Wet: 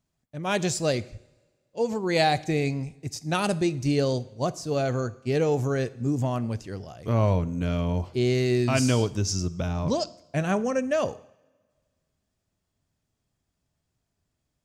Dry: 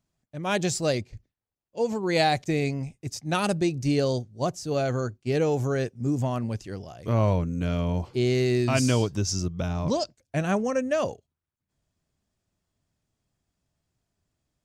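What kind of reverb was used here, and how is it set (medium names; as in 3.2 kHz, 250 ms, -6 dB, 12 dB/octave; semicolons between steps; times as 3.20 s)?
two-slope reverb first 0.7 s, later 1.9 s, DRR 15.5 dB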